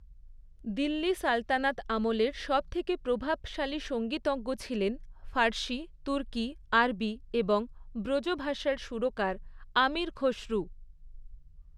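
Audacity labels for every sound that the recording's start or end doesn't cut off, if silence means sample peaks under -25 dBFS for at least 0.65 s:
0.780000	10.600000	sound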